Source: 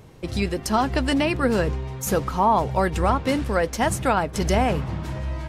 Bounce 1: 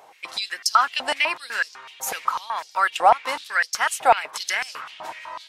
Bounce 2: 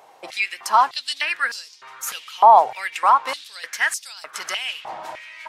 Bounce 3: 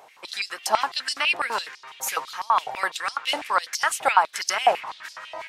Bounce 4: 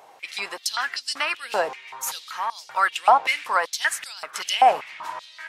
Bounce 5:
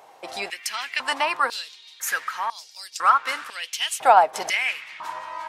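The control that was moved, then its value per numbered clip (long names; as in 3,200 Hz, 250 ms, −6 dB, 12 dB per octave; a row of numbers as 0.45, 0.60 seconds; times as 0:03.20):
high-pass on a step sequencer, speed: 8, 3.3, 12, 5.2, 2 Hertz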